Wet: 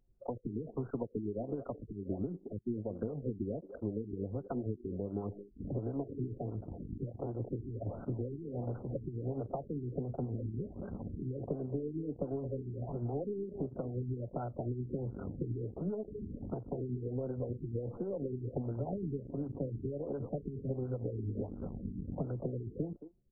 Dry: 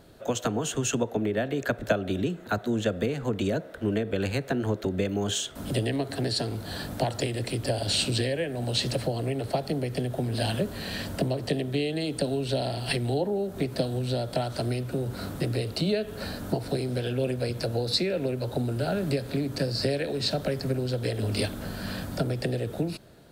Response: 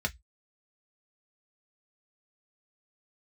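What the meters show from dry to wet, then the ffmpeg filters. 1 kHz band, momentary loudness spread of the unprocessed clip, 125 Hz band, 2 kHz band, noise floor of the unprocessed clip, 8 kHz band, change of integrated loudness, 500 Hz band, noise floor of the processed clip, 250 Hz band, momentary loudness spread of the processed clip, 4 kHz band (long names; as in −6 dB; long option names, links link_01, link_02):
−13.5 dB, 4 LU, −8.5 dB, below −30 dB, −42 dBFS, below −40 dB, −10.5 dB, −10.5 dB, −55 dBFS, −9.0 dB, 4 LU, below −40 dB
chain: -filter_complex "[0:a]bandreject=frequency=630:width=14,aeval=exprs='0.282*(cos(1*acos(clip(val(0)/0.282,-1,1)))-cos(1*PI/2))+0.0141*(cos(4*acos(clip(val(0)/0.282,-1,1)))-cos(4*PI/2))':channel_layout=same,highshelf=frequency=4400:gain=-7.5,asplit=2[link_01][link_02];[link_02]adelay=220,highpass=300,lowpass=3400,asoftclip=type=hard:threshold=-20dB,volume=-10dB[link_03];[link_01][link_03]amix=inputs=2:normalize=0,anlmdn=15.8,acompressor=threshold=-31dB:ratio=3,adynamicequalizer=threshold=0.00112:dfrequency=5700:dqfactor=1.7:tfrequency=5700:tqfactor=1.7:attack=5:release=100:ratio=0.375:range=2.5:mode=cutabove:tftype=bell,acrossover=split=590[link_04][link_05];[link_04]aeval=exprs='val(0)*(1-0.5/2+0.5/2*cos(2*PI*8.5*n/s))':channel_layout=same[link_06];[link_05]aeval=exprs='val(0)*(1-0.5/2-0.5/2*cos(2*PI*8.5*n/s))':channel_layout=same[link_07];[link_06][link_07]amix=inputs=2:normalize=0,afftfilt=real='re*lt(b*sr/1024,410*pow(1600/410,0.5+0.5*sin(2*PI*1.4*pts/sr)))':imag='im*lt(b*sr/1024,410*pow(1600/410,0.5+0.5*sin(2*PI*1.4*pts/sr)))':win_size=1024:overlap=0.75,volume=-1.5dB"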